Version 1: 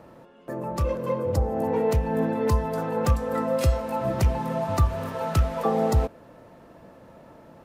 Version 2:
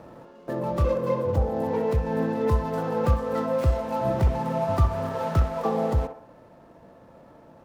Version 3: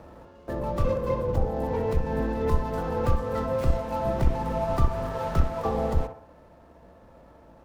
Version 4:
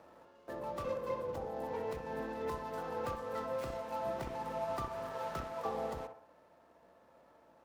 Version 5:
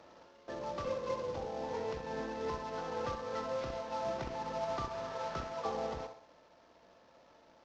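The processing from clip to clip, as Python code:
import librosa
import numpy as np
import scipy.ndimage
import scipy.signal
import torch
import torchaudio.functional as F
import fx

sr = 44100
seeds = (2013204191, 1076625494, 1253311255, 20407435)

y1 = scipy.ndimage.median_filter(x, 15, mode='constant')
y1 = fx.rider(y1, sr, range_db=10, speed_s=0.5)
y1 = fx.echo_banded(y1, sr, ms=63, feedback_pct=48, hz=840.0, wet_db=-6)
y2 = fx.octave_divider(y1, sr, octaves=2, level_db=2.0)
y2 = fx.low_shelf(y2, sr, hz=390.0, db=-3.5)
y2 = y2 * 10.0 ** (-1.0 / 20.0)
y3 = fx.highpass(y2, sr, hz=550.0, slope=6)
y3 = y3 * 10.0 ** (-7.0 / 20.0)
y4 = fx.cvsd(y3, sr, bps=32000)
y4 = y4 * 10.0 ** (1.0 / 20.0)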